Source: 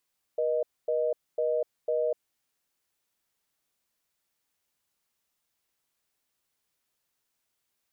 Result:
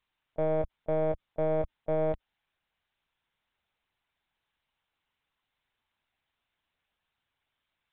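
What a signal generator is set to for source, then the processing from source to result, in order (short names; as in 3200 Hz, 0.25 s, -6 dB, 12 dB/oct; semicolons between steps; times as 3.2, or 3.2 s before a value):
call progress tone reorder tone, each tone -27 dBFS 1.77 s
HPF 450 Hz 12 dB/oct; in parallel at -6 dB: one-sided clip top -43 dBFS, bottom -26.5 dBFS; on the sum: LPC vocoder at 8 kHz pitch kept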